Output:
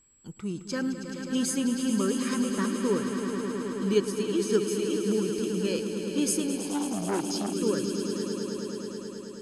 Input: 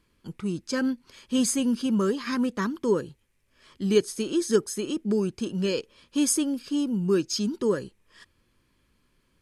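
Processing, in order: whistle 7.7 kHz -57 dBFS; echo with a slow build-up 107 ms, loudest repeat 5, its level -10 dB; 6.57–7.53 s: transformer saturation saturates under 950 Hz; trim -4 dB

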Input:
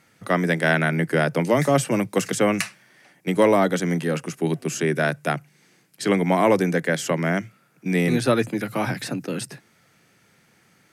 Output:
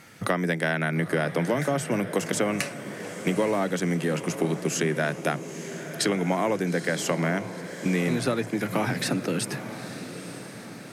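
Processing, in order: compression 5:1, threshold -33 dBFS, peak gain reduction 18.5 dB; on a send: echo that smears into a reverb 904 ms, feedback 52%, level -11 dB; on the sum: trim +9 dB

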